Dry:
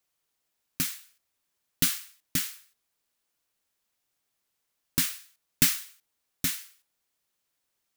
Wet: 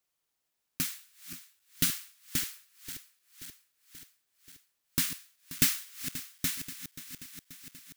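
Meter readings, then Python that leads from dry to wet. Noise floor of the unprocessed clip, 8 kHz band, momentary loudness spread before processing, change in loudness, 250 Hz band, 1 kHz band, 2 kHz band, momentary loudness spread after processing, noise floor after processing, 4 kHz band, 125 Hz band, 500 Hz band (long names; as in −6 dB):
−80 dBFS, −2.5 dB, 18 LU, −4.5 dB, −2.5 dB, −2.5 dB, −2.5 dB, 20 LU, −82 dBFS, −2.5 dB, −2.5 dB, −2.5 dB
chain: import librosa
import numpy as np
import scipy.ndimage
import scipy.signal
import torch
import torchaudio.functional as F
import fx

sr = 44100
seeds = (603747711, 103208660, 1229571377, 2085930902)

y = fx.reverse_delay_fb(x, sr, ms=266, feedback_pct=79, wet_db=-13.0)
y = y * librosa.db_to_amplitude(-3.0)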